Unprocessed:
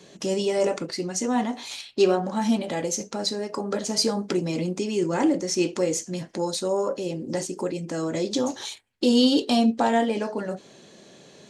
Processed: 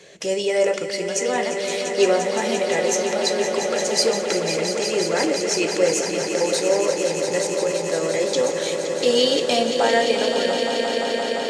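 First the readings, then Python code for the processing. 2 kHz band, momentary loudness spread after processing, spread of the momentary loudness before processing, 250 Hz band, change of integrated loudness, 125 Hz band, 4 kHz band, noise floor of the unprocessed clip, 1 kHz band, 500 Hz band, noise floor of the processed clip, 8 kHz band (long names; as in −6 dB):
+10.5 dB, 5 LU, 10 LU, −3.5 dB, +4.5 dB, −2.5 dB, +6.0 dB, −51 dBFS, +4.0 dB, +7.0 dB, −27 dBFS, +6.5 dB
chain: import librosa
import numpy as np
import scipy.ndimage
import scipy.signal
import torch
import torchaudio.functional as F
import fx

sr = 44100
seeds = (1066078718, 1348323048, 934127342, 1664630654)

y = fx.graphic_eq(x, sr, hz=(250, 500, 1000, 2000, 8000), db=(-11, 9, -4, 10, 4))
y = fx.echo_swell(y, sr, ms=173, loudest=5, wet_db=-9.5)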